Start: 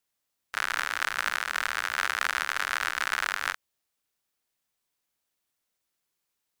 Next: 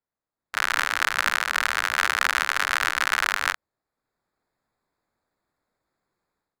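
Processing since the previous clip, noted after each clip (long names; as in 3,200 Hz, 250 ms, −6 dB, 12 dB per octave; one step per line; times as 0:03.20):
adaptive Wiener filter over 15 samples
automatic gain control gain up to 13.5 dB
level −1 dB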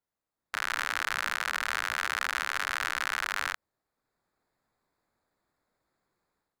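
brickwall limiter −13 dBFS, peak gain reduction 11 dB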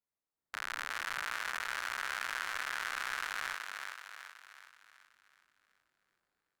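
feedback echo with a high-pass in the loop 376 ms, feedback 49%, high-pass 340 Hz, level −4 dB
level −8 dB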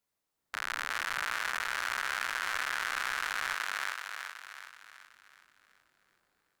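brickwall limiter −26 dBFS, peak gain reduction 7.5 dB
level +8.5 dB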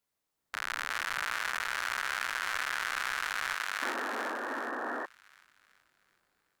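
sound drawn into the spectrogram noise, 0:03.82–0:05.06, 220–1,900 Hz −36 dBFS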